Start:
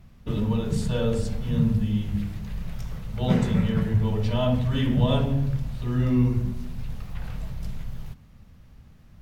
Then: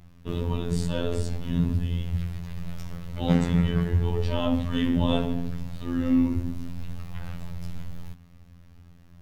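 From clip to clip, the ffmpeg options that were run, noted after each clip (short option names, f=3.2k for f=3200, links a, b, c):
-af "afftfilt=real='hypot(re,im)*cos(PI*b)':imag='0':win_size=2048:overlap=0.75,volume=3dB"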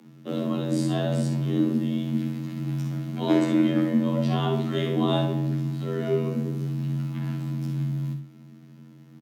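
-af "afreqshift=140,aecho=1:1:49|64:0.316|0.335"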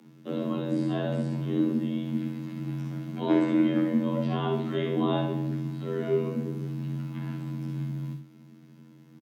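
-filter_complex "[0:a]acrossover=split=3300[a][b];[b]acompressor=threshold=-52dB:ratio=4:attack=1:release=60[c];[a][c]amix=inputs=2:normalize=0,asplit=2[d][e];[e]adelay=25,volume=-11dB[f];[d][f]amix=inputs=2:normalize=0,volume=-2.5dB"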